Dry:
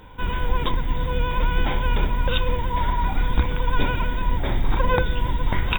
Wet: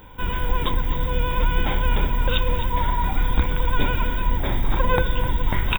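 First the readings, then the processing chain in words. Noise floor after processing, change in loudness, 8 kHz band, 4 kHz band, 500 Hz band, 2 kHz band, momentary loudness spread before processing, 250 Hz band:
-26 dBFS, +1.0 dB, no reading, +1.0 dB, +0.5 dB, +0.5 dB, 3 LU, +0.5 dB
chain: treble shelf 11 kHz +11.5 dB; on a send: delay 255 ms -12 dB

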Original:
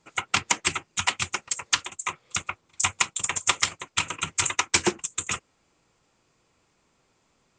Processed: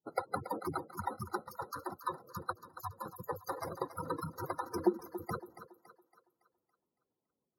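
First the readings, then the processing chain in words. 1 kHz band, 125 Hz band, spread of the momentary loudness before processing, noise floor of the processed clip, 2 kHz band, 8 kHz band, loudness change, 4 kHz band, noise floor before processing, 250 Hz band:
-7.0 dB, -5.5 dB, 8 LU, under -85 dBFS, -21.0 dB, -30.5 dB, -13.5 dB, -29.5 dB, -69 dBFS, -2.0 dB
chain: bit-reversed sample order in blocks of 16 samples; expander -52 dBFS; dynamic bell 510 Hz, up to +7 dB, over -56 dBFS, Q 6.5; peak limiter -12.5 dBFS, peak gain reduction 9.5 dB; compression 5:1, threshold -30 dBFS, peak gain reduction 9.5 dB; spectral gate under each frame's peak -10 dB strong; band-pass filter 390 Hz, Q 0.63; on a send: thinning echo 280 ms, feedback 46%, high-pass 290 Hz, level -12 dB; on the sum: trim +10.5 dB

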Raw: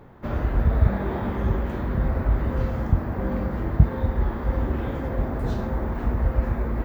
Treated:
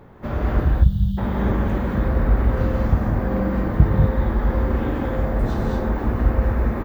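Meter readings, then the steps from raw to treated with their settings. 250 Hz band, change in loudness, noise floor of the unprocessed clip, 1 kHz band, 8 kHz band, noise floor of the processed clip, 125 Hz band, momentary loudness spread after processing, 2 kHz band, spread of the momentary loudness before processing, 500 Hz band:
+5.0 dB, +4.0 dB, -31 dBFS, +4.0 dB, no reading, -26 dBFS, +3.5 dB, 5 LU, +4.5 dB, 6 LU, +4.5 dB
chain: spectral selection erased 0.61–1.18 s, 200–2800 Hz; echo from a far wall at 48 m, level -23 dB; gated-style reverb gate 250 ms rising, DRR -0.5 dB; trim +1.5 dB

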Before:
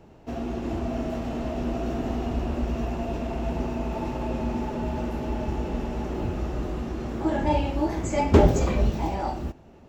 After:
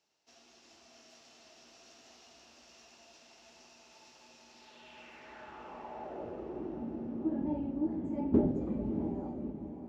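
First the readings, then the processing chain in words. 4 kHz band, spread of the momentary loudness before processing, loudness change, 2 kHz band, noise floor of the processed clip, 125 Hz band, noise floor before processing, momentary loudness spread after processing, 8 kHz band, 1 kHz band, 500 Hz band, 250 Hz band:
-14.0 dB, 8 LU, -8.0 dB, -17.5 dB, -61 dBFS, -17.5 dB, -50 dBFS, 21 LU, no reading, -18.0 dB, -13.5 dB, -8.0 dB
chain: band-pass sweep 5.4 kHz -> 250 Hz, 4.48–6.87 s; echo that smears into a reverb 640 ms, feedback 42%, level -8 dB; trim -3.5 dB

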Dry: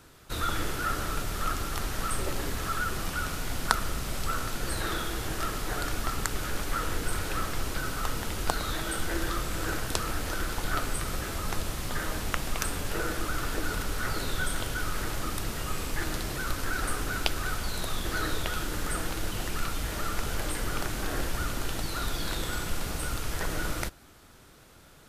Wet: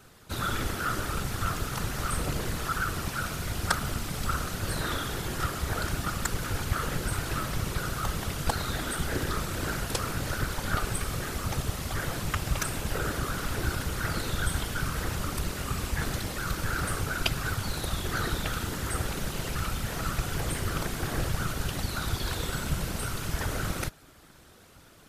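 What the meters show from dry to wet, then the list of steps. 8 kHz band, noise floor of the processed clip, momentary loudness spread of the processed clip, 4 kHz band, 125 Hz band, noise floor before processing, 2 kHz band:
0.0 dB, -53 dBFS, 2 LU, 0.0 dB, +4.5 dB, -54 dBFS, 0.0 dB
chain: whisper effect

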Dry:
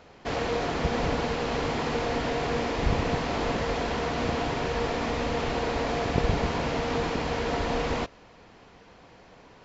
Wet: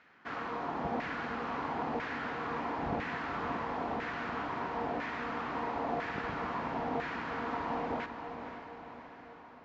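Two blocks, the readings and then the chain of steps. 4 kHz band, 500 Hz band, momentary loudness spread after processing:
-14.5 dB, -10.5 dB, 9 LU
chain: resonant low shelf 360 Hz +9.5 dB, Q 1.5; LFO band-pass saw down 1 Hz 720–1800 Hz; echo that smears into a reverb 514 ms, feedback 56%, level -8 dB

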